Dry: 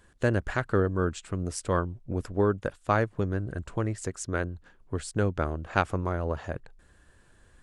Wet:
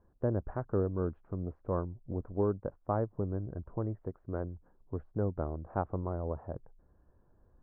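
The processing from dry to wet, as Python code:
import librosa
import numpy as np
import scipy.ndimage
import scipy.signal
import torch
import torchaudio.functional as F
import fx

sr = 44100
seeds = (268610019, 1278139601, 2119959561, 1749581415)

y = scipy.signal.sosfilt(scipy.signal.butter(4, 1000.0, 'lowpass', fs=sr, output='sos'), x)
y = y * 10.0 ** (-5.5 / 20.0)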